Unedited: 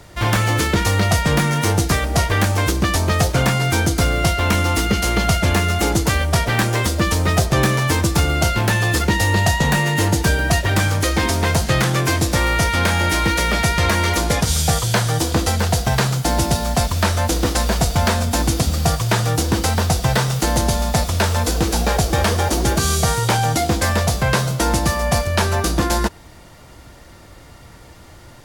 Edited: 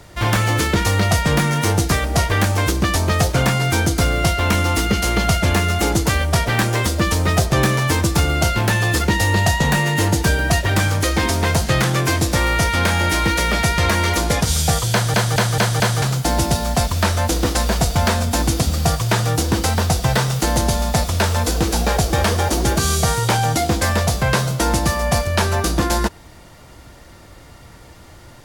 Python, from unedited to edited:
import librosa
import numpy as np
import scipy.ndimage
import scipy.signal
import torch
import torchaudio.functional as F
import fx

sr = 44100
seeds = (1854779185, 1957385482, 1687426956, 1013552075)

y = fx.edit(x, sr, fx.stutter_over(start_s=14.92, slice_s=0.22, count=5), tone=tone)